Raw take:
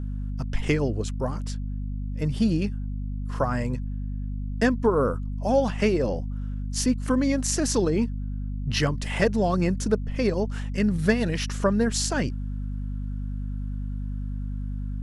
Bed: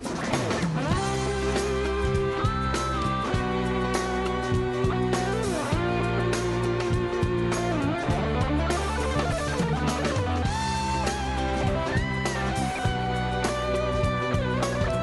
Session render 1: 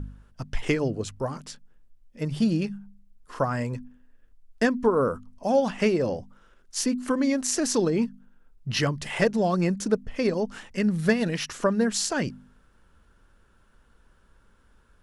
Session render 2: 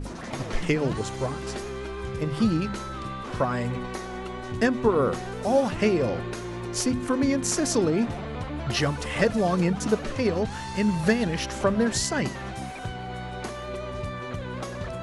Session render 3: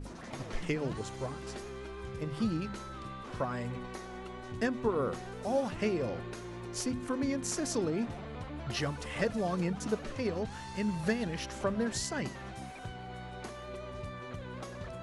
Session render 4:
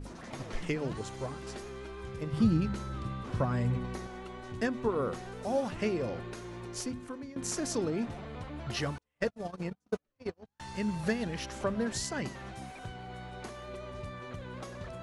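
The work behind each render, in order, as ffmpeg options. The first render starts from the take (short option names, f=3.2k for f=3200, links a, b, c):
-af "bandreject=f=50:t=h:w=4,bandreject=f=100:t=h:w=4,bandreject=f=150:t=h:w=4,bandreject=f=200:t=h:w=4,bandreject=f=250:t=h:w=4"
-filter_complex "[1:a]volume=-8dB[a];[0:a][a]amix=inputs=2:normalize=0"
-af "volume=-9dB"
-filter_complex "[0:a]asettb=1/sr,asplit=3[a][b][c];[a]atrim=end=2.334[d];[b]atrim=start=2.33:end=4.07,asetpts=PTS-STARTPTS,afade=t=in:d=0.004:c=qsin,afade=t=out:st=1.736:d=0.004:c=qsin,equalizer=f=97:t=o:w=2.6:g=11[e];[c]atrim=start=4.066[f];[d][e]acrossfade=d=0.004:c1=hsin:c2=qsin[g];[g][f]acrossfade=d=0.004:c1=qsin:c2=hsin,asettb=1/sr,asplit=3[h][i][j];[h]atrim=end=8.984[k];[i]atrim=start=8.98:end=10.6,asetpts=PTS-STARTPTS,afade=t=in:d=0.004:c=qsin,afade=t=out:st=1.616:d=0.004:c=qsin,agate=range=-45dB:threshold=-31dB:ratio=16:release=100:detection=peak[l];[j]atrim=start=10.596[m];[k][l]acrossfade=d=0.004:c1=hsin:c2=qsin[n];[n][m]acrossfade=d=0.004:c1=qsin:c2=hsin,asplit=2[o][p];[o]atrim=end=7.36,asetpts=PTS-STARTPTS,afade=t=out:st=6.65:d=0.71:silence=0.125893[q];[p]atrim=start=7.36,asetpts=PTS-STARTPTS,afade=t=in:d=0.004:c=hsin:silence=0.125893[r];[q][r]concat=n=2:v=0:a=1"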